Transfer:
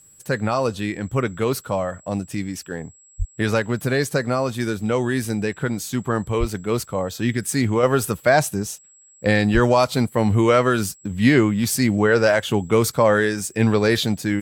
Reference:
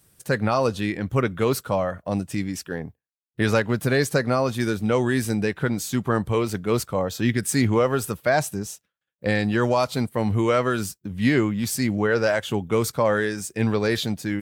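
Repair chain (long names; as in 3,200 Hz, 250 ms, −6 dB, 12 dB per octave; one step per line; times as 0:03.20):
notch filter 7,700 Hz, Q 30
0:03.18–0:03.30: high-pass filter 140 Hz 24 dB per octave
0:06.39–0:06.51: high-pass filter 140 Hz 24 dB per octave
0:07.83: level correction −4.5 dB
0:09.53–0:09.65: high-pass filter 140 Hz 24 dB per octave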